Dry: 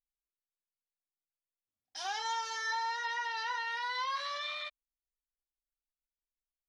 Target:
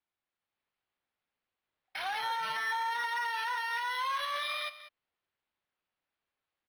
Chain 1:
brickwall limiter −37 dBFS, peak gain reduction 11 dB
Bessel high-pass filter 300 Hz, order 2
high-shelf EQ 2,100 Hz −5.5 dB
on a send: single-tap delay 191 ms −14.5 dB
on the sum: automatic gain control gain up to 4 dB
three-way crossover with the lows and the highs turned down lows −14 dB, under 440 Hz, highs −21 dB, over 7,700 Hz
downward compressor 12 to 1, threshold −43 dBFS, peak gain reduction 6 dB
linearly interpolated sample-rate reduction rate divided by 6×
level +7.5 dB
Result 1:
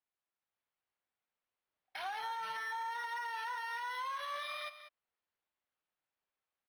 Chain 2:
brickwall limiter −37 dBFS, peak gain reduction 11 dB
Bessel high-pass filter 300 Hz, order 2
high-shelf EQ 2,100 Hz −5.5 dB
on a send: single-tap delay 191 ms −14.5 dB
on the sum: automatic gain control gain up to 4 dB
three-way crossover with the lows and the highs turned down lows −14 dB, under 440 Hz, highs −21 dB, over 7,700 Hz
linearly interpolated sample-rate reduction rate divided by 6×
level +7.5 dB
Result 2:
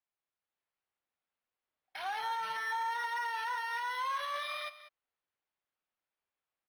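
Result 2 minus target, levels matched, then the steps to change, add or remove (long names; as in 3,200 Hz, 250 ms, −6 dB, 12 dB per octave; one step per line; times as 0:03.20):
4,000 Hz band −3.0 dB
change: high-shelf EQ 2,100 Hz +2 dB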